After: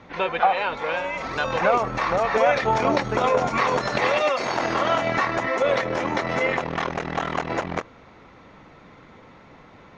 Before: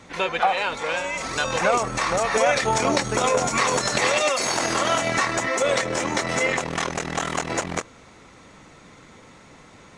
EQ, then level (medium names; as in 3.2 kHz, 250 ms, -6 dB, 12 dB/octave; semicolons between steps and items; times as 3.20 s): distance through air 210 m; peaking EQ 820 Hz +2.5 dB 1.5 oct; band-stop 7.6 kHz, Q 7.7; 0.0 dB